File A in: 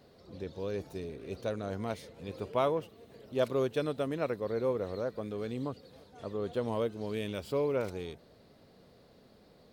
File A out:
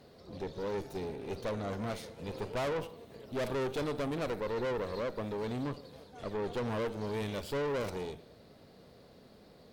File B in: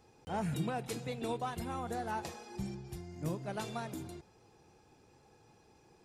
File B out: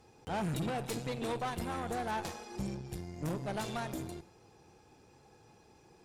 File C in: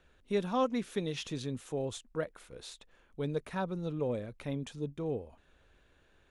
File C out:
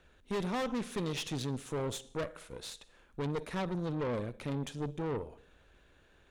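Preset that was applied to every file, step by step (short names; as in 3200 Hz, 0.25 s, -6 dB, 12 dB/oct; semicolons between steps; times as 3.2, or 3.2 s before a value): Schroeder reverb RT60 0.67 s, DRR 16.5 dB; tube stage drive 38 dB, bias 0.75; gain +7 dB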